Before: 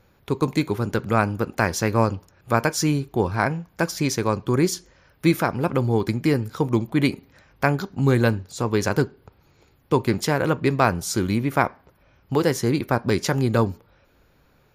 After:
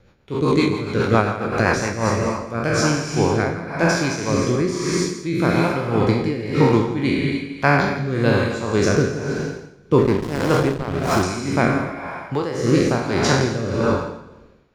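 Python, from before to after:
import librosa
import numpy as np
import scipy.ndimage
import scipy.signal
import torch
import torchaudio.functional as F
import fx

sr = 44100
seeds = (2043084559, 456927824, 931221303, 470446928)

p1 = fx.spec_trails(x, sr, decay_s=1.15)
p2 = scipy.signal.sosfilt(scipy.signal.butter(2, 6600.0, 'lowpass', fs=sr, output='sos'), p1)
p3 = fx.rev_gated(p2, sr, seeds[0], gate_ms=330, shape='rising', drr_db=4.0)
p4 = p3 * (1.0 - 0.7 / 2.0 + 0.7 / 2.0 * np.cos(2.0 * np.pi * 1.8 * (np.arange(len(p3)) / sr)))
p5 = fx.rider(p4, sr, range_db=5, speed_s=2.0)
p6 = p4 + F.gain(torch.from_numpy(p5), -3.0).numpy()
p7 = fx.rotary_switch(p6, sr, hz=7.5, then_hz=1.1, switch_at_s=1.58)
p8 = p7 + fx.echo_single(p7, sr, ms=168, db=-13.5, dry=0)
p9 = fx.backlash(p8, sr, play_db=-15.5, at=(9.98, 11.23))
y = F.gain(torch.from_numpy(p9), -1.0).numpy()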